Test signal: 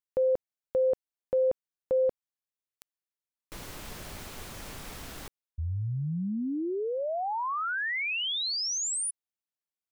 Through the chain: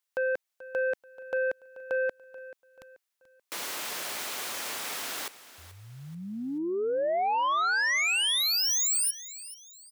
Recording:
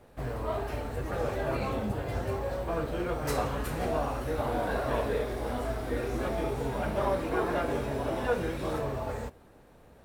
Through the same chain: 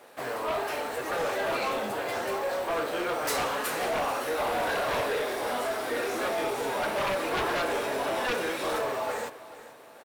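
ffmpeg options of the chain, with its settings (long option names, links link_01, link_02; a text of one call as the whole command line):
ffmpeg -i in.wav -filter_complex "[0:a]highpass=330,tiltshelf=frequency=650:gain=-4.5,aeval=exprs='0.158*sin(PI/2*3.55*val(0)/0.158)':channel_layout=same,asplit=2[link_01][link_02];[link_02]aecho=0:1:434|868|1302:0.15|0.0554|0.0205[link_03];[link_01][link_03]amix=inputs=2:normalize=0,volume=-8.5dB" out.wav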